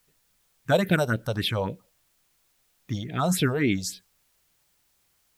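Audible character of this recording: phasing stages 4, 3.6 Hz, lowest notch 280–1200 Hz; a quantiser's noise floor 12-bit, dither triangular

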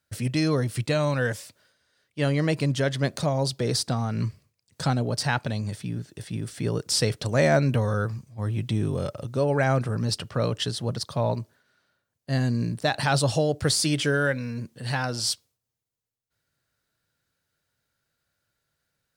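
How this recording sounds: noise floor -82 dBFS; spectral tilt -5.0 dB/oct

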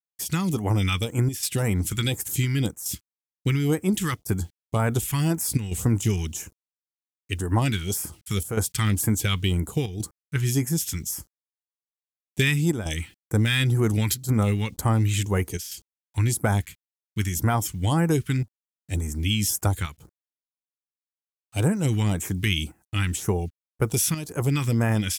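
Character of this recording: a quantiser's noise floor 10-bit, dither none; chopped level 0.7 Hz, depth 60%, duty 90%; phasing stages 2, 1.9 Hz, lowest notch 590–3400 Hz

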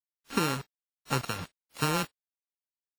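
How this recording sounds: a buzz of ramps at a fixed pitch in blocks of 32 samples; tremolo triangle 1.3 Hz, depth 45%; a quantiser's noise floor 6-bit, dither none; WMA

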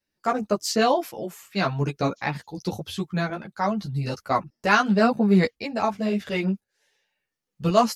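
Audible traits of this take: tremolo saw up 0.91 Hz, depth 55%; a shimmering, thickened sound

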